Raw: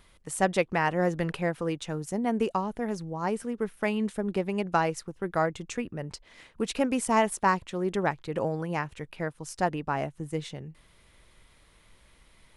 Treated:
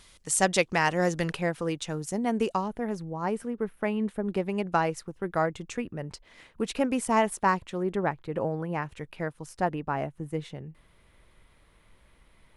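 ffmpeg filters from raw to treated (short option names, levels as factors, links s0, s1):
-af "asetnsamples=n=441:p=0,asendcmd='1.34 equalizer g 4.5;2.68 equalizer g -5;3.48 equalizer g -12;4.24 equalizer g -2.5;7.83 equalizer g -11.5;8.82 equalizer g -2;9.46 equalizer g -8.5',equalizer=f=6300:t=o:w=2:g=12"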